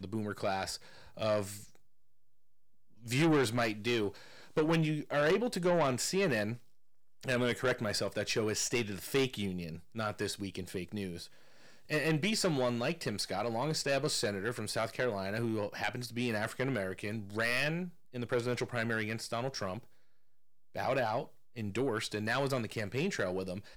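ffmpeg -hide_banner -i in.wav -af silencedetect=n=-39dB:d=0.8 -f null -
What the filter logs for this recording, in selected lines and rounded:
silence_start: 1.59
silence_end: 3.06 | silence_duration: 1.48
silence_start: 19.79
silence_end: 20.76 | silence_duration: 0.97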